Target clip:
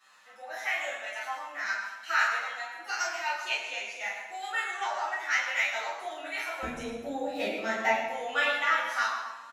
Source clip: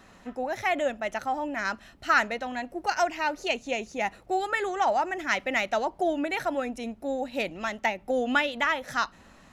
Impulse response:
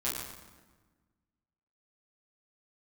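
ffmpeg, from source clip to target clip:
-filter_complex "[0:a]asetnsamples=nb_out_samples=441:pad=0,asendcmd='6.63 highpass f 330;7.9 highpass f 820',highpass=1300[link_01];[1:a]atrim=start_sample=2205[link_02];[link_01][link_02]afir=irnorm=-1:irlink=0,asplit=2[link_03][link_04];[link_04]adelay=8.2,afreqshift=0.84[link_05];[link_03][link_05]amix=inputs=2:normalize=1,volume=-1.5dB"

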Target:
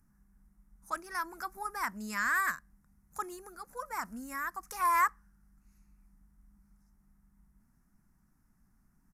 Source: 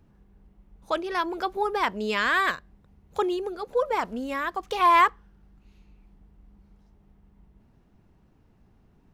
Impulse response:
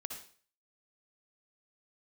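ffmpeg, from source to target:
-af "firequalizer=gain_entry='entry(210,0);entry(430,-19);entry(720,-10);entry(1300,1);entry(1900,-1);entry(3200,-22);entry(5300,4);entry(10000,14)':delay=0.05:min_phase=1,aresample=32000,aresample=44100,equalizer=frequency=93:width_type=o:width=1.4:gain=-9.5,volume=-5dB"

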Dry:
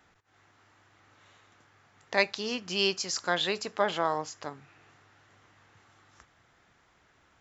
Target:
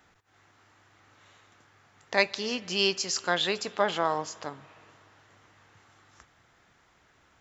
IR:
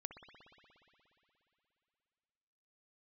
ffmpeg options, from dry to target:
-filter_complex "[0:a]asplit=2[link_01][link_02];[1:a]atrim=start_sample=2205,highshelf=frequency=4100:gain=11.5[link_03];[link_02][link_03]afir=irnorm=-1:irlink=0,volume=-11dB[link_04];[link_01][link_04]amix=inputs=2:normalize=0"

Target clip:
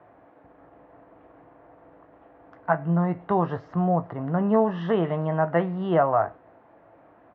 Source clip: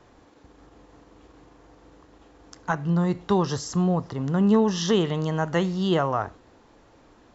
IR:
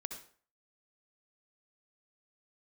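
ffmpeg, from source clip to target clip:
-filter_complex "[0:a]highpass=120,equalizer=frequency=230:width_type=q:width=4:gain=-6,equalizer=frequency=410:width_type=q:width=4:gain=-4,equalizer=frequency=660:width_type=q:width=4:gain=10,lowpass=frequency=2100:width=0.5412,lowpass=frequency=2100:width=1.3066,asplit=2[link_01][link_02];[link_02]adelay=18,volume=-11.5dB[link_03];[link_01][link_03]amix=inputs=2:normalize=0"

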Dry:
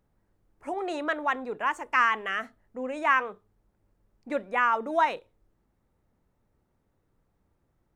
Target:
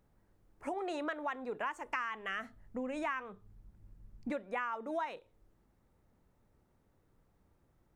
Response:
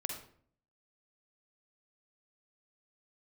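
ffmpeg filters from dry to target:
-filter_complex "[0:a]asettb=1/sr,asplit=3[link_01][link_02][link_03];[link_01]atrim=end=1.644[link_04];[link_02]atrim=start=1.64:end=4.31,asetpts=PTS-STARTPTS,afade=type=in:duration=0.004:curve=qsin,afade=type=out:start_time=2.666:duration=0.004:curve=qsin,asubboost=boost=6.5:cutoff=220[link_05];[link_03]atrim=start=4.306[link_06];[link_04][link_05]acrossfade=duration=0.004:curve1=hsin:curve2=qsin[link_07];[link_07][link_06]acrossfade=duration=0.004:curve1=qsin:curve2=hsin,acompressor=threshold=-36dB:ratio=6,volume=1dB"

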